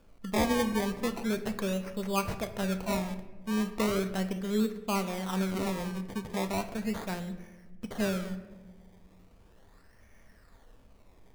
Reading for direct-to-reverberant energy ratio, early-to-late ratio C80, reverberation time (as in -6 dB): 8.0 dB, 13.5 dB, 1.2 s